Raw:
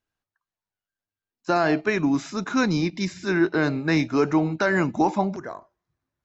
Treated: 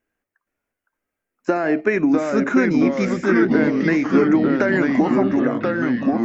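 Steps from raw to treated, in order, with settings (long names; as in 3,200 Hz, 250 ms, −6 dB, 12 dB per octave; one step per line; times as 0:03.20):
downward compressor, threshold −25 dBFS, peak gain reduction 10 dB
delay with pitch and tempo change per echo 468 ms, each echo −2 semitones, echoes 3
octave-band graphic EQ 125/250/500/1,000/2,000/4,000 Hz −7/+7/+7/−4/+9/−12 dB
level +4.5 dB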